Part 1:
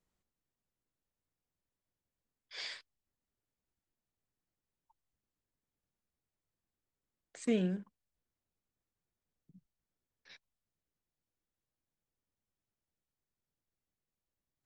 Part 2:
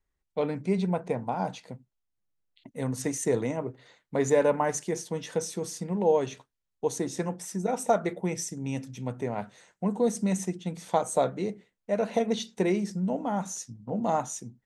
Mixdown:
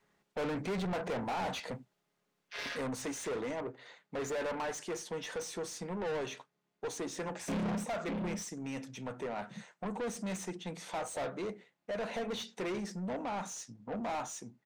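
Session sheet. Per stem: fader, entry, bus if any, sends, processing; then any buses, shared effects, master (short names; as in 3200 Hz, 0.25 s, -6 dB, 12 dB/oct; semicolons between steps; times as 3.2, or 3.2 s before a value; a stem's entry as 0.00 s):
-4.0 dB, 0.00 s, no send, echo send -11.5 dB, chord vocoder major triad, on C#3
2.46 s -13.5 dB -> 3.21 s -23.5 dB, 0.00 s, no send, no echo send, dry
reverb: off
echo: echo 0.589 s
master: overdrive pedal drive 35 dB, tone 3100 Hz, clips at -28 dBFS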